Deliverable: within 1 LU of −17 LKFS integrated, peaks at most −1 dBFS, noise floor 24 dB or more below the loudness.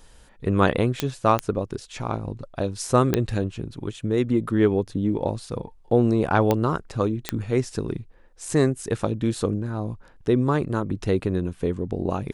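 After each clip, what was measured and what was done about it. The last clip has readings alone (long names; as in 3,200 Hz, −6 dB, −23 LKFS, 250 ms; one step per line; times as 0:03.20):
number of clicks 5; integrated loudness −24.5 LKFS; sample peak −4.0 dBFS; target loudness −17.0 LKFS
→ click removal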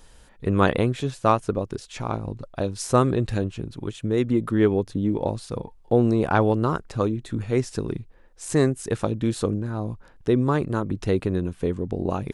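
number of clicks 0; integrated loudness −24.5 LKFS; sample peak −4.0 dBFS; target loudness −17.0 LKFS
→ level +7.5 dB
brickwall limiter −1 dBFS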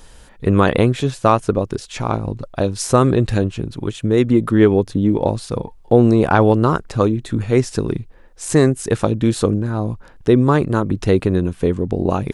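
integrated loudness −17.5 LKFS; sample peak −1.0 dBFS; background noise floor −44 dBFS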